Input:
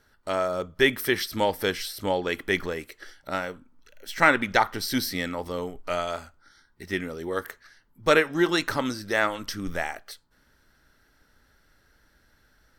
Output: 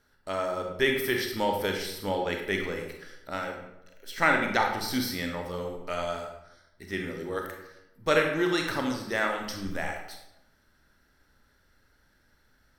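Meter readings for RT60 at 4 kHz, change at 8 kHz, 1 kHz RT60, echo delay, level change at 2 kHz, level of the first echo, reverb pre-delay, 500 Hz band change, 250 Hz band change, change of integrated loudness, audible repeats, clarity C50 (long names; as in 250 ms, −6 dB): 0.60 s, −3.5 dB, 0.85 s, no echo audible, −3.0 dB, no echo audible, 28 ms, −2.5 dB, −2.5 dB, −3.0 dB, no echo audible, 4.0 dB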